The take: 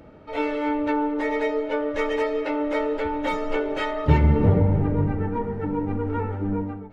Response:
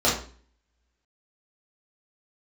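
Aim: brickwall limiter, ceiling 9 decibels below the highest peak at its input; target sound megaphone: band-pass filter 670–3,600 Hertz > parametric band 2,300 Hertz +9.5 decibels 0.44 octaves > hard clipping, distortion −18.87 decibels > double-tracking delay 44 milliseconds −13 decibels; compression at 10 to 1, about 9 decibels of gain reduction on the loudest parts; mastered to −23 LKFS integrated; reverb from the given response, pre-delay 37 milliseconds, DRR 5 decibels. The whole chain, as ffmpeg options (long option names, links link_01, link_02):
-filter_complex "[0:a]acompressor=threshold=-21dB:ratio=10,alimiter=limit=-21dB:level=0:latency=1,asplit=2[link_01][link_02];[1:a]atrim=start_sample=2205,adelay=37[link_03];[link_02][link_03]afir=irnorm=-1:irlink=0,volume=-21.5dB[link_04];[link_01][link_04]amix=inputs=2:normalize=0,highpass=670,lowpass=3600,equalizer=frequency=2300:width_type=o:width=0.44:gain=9.5,asoftclip=type=hard:threshold=-25dB,asplit=2[link_05][link_06];[link_06]adelay=44,volume=-13dB[link_07];[link_05][link_07]amix=inputs=2:normalize=0,volume=8.5dB"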